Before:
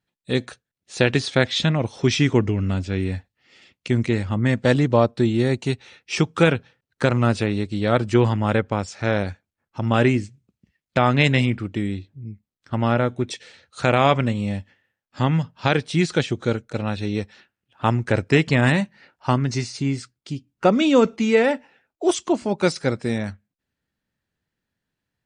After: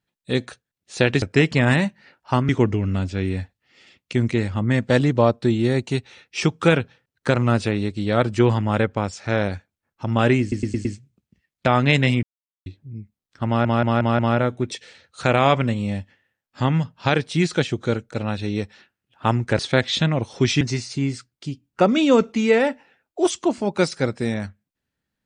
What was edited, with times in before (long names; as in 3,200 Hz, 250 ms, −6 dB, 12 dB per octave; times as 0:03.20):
0:01.22–0:02.24: swap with 0:18.18–0:19.45
0:10.16: stutter 0.11 s, 5 plays
0:11.54–0:11.97: silence
0:12.78: stutter 0.18 s, 5 plays